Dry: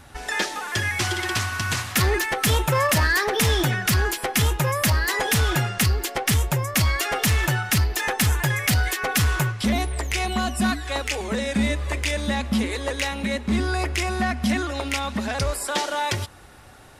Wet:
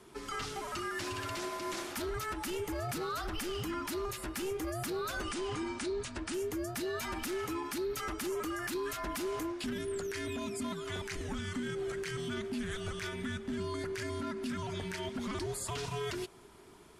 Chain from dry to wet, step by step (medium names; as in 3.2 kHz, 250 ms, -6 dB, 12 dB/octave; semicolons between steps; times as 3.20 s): frequency shift -460 Hz; peak limiter -20 dBFS, peak gain reduction 11 dB; 5.23–6.34 s: brick-wall FIR low-pass 10 kHz; trim -9 dB